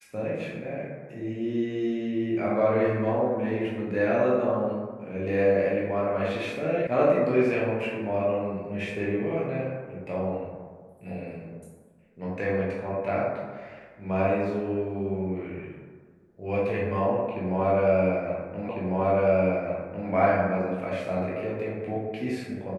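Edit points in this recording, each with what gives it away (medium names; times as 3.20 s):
6.87 s: sound stops dead
18.69 s: repeat of the last 1.4 s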